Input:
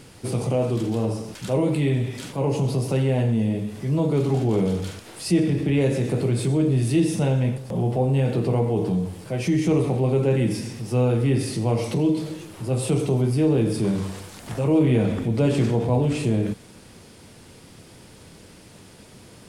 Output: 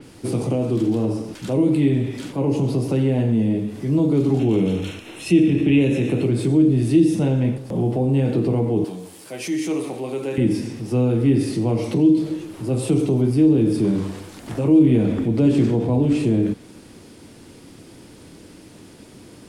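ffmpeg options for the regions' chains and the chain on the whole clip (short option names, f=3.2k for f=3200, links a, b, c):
-filter_complex "[0:a]asettb=1/sr,asplit=3[a][b][c];[a]atrim=end=4.394[d];[b]atrim=start=4.39:end=6.27,asetpts=PTS-STARTPTS,afade=t=in:d=0.004:c=qsin,afade=t=out:st=1.876:d=0.004:c=qsin,asuperstop=centerf=4700:order=12:qfactor=7.3,equalizer=f=2.7k:w=2.7:g=11.5[e];[c]atrim=start=6.266[f];[d][e]acrossfade=d=0.004:c1=hsin:c2=qsin[g];[g][f]acrossfade=d=0.004:c1=qsin:c2=hsin,asettb=1/sr,asplit=3[h][i][j];[h]atrim=end=8.844[k];[i]atrim=start=8.84:end=10.38,asetpts=PTS-STARTPTS,afade=t=in:d=0.004:c=qsin,afade=t=out:st=1.536:d=0.004:c=qsin,highpass=f=890:p=1,aemphasis=mode=production:type=cd[l];[j]atrim=start=10.376[m];[k][l]acrossfade=d=0.004:c1=hsin:c2=qsin[n];[n][m]acrossfade=d=0.004:c1=qsin:c2=hsin,equalizer=f=300:w=2.1:g=9.5,acrossover=split=350|3000[o][p][q];[p]acompressor=threshold=-24dB:ratio=6[r];[o][r][q]amix=inputs=3:normalize=0,adynamicequalizer=threshold=0.00447:dfrequency=4600:dqfactor=0.7:tfrequency=4600:tqfactor=0.7:attack=5:release=100:ratio=0.375:range=2:mode=cutabove:tftype=highshelf"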